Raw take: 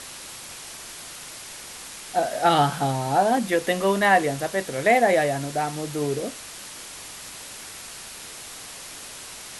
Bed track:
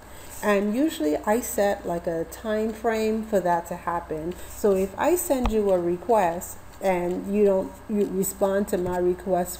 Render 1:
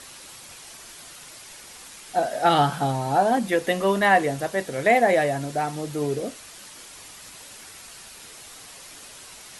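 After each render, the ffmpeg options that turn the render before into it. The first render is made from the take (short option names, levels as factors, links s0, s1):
-af "afftdn=nr=6:nf=-40"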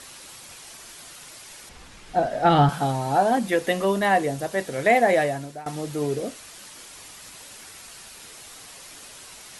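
-filter_complex "[0:a]asettb=1/sr,asplit=3[s0][s1][s2];[s0]atrim=end=1.694[s3];[s1]atrim=start=1.69:end=2.69,asetpts=PTS-STARTPTS,afade=t=in:d=0.004:c=qsin,afade=t=out:st=0.996:d=0.004:c=qsin,aemphasis=mode=reproduction:type=bsi[s4];[s2]atrim=start=2.686[s5];[s3][s4]acrossfade=d=0.004:c1=hsin:c2=qsin[s6];[s6][s5]acrossfade=d=0.004:c1=qsin:c2=hsin,asettb=1/sr,asplit=3[s7][s8][s9];[s7]atrim=end=3.854[s10];[s8]atrim=start=3.85:end=4.51,asetpts=PTS-STARTPTS,afade=t=in:d=0.004:c=qsin,afade=t=out:st=0.656:d=0.004:c=qsin,equalizer=f=1700:t=o:w=2:g=-4.5[s11];[s9]atrim=start=4.506[s12];[s10][s11]acrossfade=d=0.004:c1=hsin:c2=qsin[s13];[s13][s12]acrossfade=d=0.004:c1=qsin:c2=hsin,asplit=2[s14][s15];[s14]atrim=end=5.66,asetpts=PTS-STARTPTS,afade=t=out:st=5.22:d=0.44:silence=0.112202[s16];[s15]atrim=start=5.66,asetpts=PTS-STARTPTS,afade=t=in:d=0.004:c=hsin:silence=0.112202[s17];[s16][s17]concat=n=2:v=0:a=1"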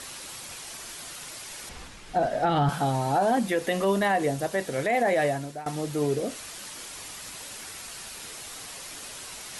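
-af "alimiter=limit=0.168:level=0:latency=1:release=48,areverse,acompressor=mode=upward:threshold=0.02:ratio=2.5,areverse"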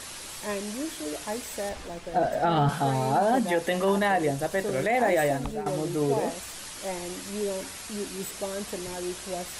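-filter_complex "[1:a]volume=0.282[s0];[0:a][s0]amix=inputs=2:normalize=0"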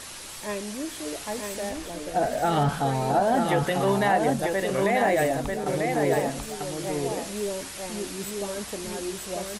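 -af "aecho=1:1:943:0.631"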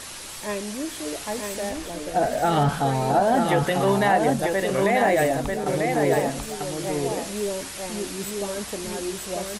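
-af "volume=1.33"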